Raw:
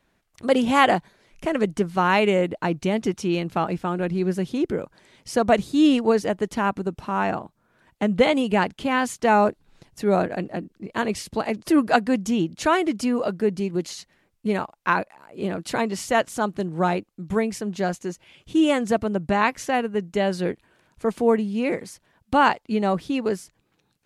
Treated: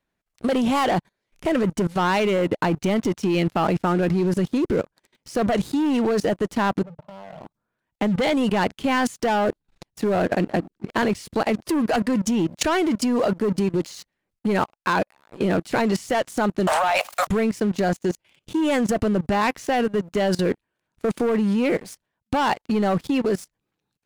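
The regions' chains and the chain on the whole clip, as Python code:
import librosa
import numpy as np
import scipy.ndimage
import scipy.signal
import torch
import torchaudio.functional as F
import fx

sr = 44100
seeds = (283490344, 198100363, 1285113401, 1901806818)

y = fx.chain(x, sr, fx.double_bandpass(hz=310.0, octaves=1.9),
    fx.over_compress(threshold_db=-38.0, ratio=-1.0),
    fx.clip_hard(threshold_db=-31.5), at=(6.83, 7.41))
y = fx.chain(y, sr, fx.steep_highpass(hz=580.0, slope=96),
    fx.env_flatten(amount_pct=100), at=(16.67, 17.27))
y = fx.leveller(y, sr, passes=3)
y = fx.level_steps(y, sr, step_db=20)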